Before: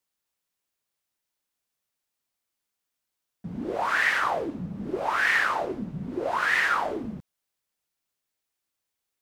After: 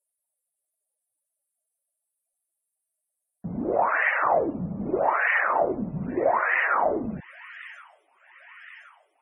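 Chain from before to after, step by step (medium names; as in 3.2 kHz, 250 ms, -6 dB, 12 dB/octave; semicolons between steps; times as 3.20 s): fifteen-band graphic EQ 630 Hz +6 dB, 1.6 kHz -4 dB, 4 kHz -7 dB, 10 kHz +9 dB; feedback echo behind a high-pass 1073 ms, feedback 63%, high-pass 2.6 kHz, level -12 dB; loudest bins only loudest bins 64; trim +3 dB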